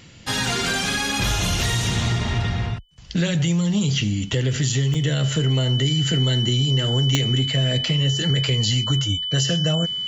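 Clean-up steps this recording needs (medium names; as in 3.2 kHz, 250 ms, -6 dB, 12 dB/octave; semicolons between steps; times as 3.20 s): de-click; band-stop 3 kHz, Q 30; interpolate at 4.94 s, 4.6 ms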